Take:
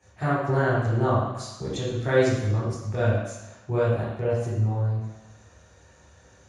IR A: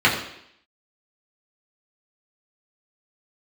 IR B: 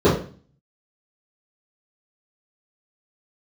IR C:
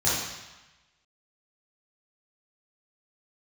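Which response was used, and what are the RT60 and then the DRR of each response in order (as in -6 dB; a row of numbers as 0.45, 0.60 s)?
C; 0.70, 0.40, 1.1 s; -6.0, -14.0, -10.0 dB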